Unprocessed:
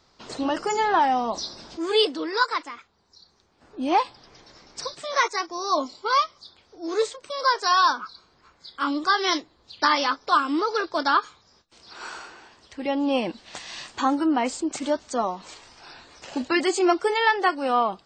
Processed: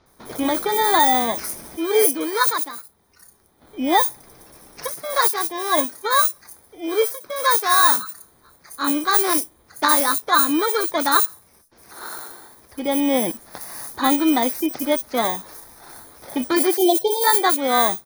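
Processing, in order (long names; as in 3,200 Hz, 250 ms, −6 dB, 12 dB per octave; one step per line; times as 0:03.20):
samples in bit-reversed order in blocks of 16 samples
0:16.77–0:17.24: elliptic band-stop filter 820–2,900 Hz, stop band 50 dB
multiband delay without the direct sound lows, highs 60 ms, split 5,400 Hz
level +4.5 dB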